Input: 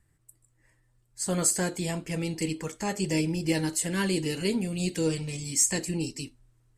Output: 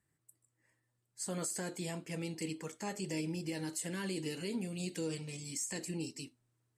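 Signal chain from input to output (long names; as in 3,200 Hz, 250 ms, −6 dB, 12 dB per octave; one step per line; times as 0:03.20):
high-pass filter 140 Hz 12 dB per octave
brickwall limiter −20.5 dBFS, peak gain reduction 9 dB
level −8 dB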